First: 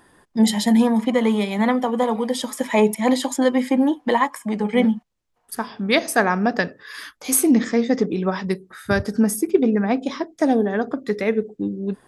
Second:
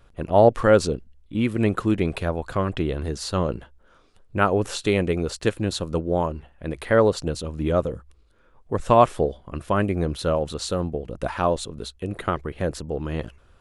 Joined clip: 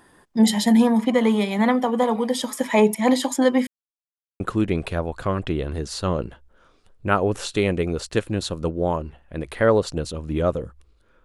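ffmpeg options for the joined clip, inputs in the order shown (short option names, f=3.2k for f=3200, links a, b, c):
-filter_complex "[0:a]apad=whole_dur=11.24,atrim=end=11.24,asplit=2[a][b];[a]atrim=end=3.67,asetpts=PTS-STARTPTS,afade=t=out:st=3.666:d=0.004:c=hsin[c];[b]atrim=start=3.67:end=4.4,asetpts=PTS-STARTPTS,volume=0[d];[1:a]atrim=start=1.7:end=8.54,asetpts=PTS-STARTPTS,afade=t=in:d=0.004:c=hsin[e];[c][d][e]concat=n=3:v=0:a=1"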